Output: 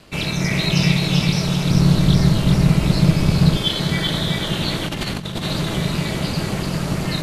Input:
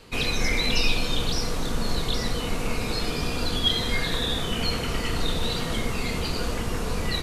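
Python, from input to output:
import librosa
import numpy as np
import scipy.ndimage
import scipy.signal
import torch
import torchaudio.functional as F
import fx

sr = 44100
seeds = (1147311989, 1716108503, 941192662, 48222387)

y = fx.echo_feedback(x, sr, ms=386, feedback_pct=48, wet_db=-4.0)
y = fx.over_compress(y, sr, threshold_db=-27.0, ratio=-0.5, at=(4.82, 5.43), fade=0.02)
y = y * np.sin(2.0 * np.pi * 160.0 * np.arange(len(y)) / sr)
y = fx.low_shelf(y, sr, hz=180.0, db=11.0, at=(1.7, 3.57))
y = y * librosa.db_to_amplitude(4.5)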